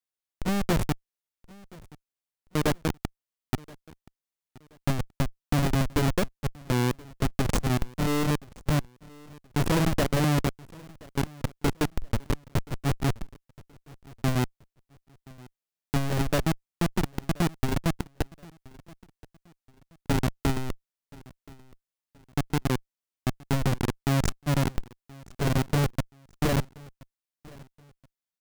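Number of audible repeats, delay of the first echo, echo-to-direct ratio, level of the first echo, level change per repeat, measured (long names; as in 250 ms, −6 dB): 2, 1,026 ms, −22.5 dB, −23.0 dB, −9.5 dB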